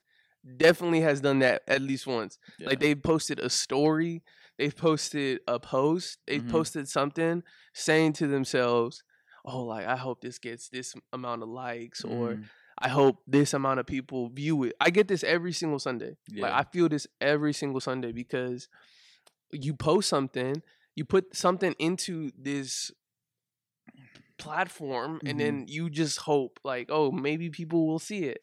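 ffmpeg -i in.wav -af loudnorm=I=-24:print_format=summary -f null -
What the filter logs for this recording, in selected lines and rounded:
Input Integrated:    -28.6 LUFS
Input True Peak:      -6.0 dBTP
Input LRA:             7.6 LU
Input Threshold:     -39.1 LUFS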